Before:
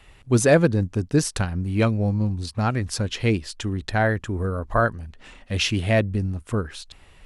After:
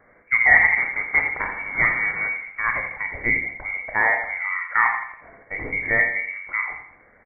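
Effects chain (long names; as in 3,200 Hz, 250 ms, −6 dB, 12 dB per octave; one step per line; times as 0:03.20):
0:00.77–0:02.29: one scale factor per block 3 bits
high-pass filter 230 Hz 24 dB per octave
in parallel at −8.5 dB: wave folding −11.5 dBFS
on the sum: frequency shifter +40 Hz
repeating echo 84 ms, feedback 41%, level −9.5 dB
on a send at −4.5 dB: convolution reverb RT60 0.50 s, pre-delay 25 ms
on the sum: voice inversion scrambler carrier 2,500 Hz
level −1.5 dB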